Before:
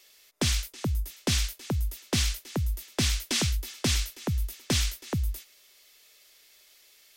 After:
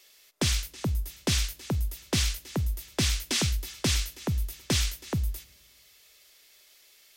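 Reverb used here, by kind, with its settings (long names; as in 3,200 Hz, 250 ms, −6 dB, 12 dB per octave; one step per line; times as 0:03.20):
coupled-rooms reverb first 0.36 s, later 1.8 s, from −16 dB, DRR 18.5 dB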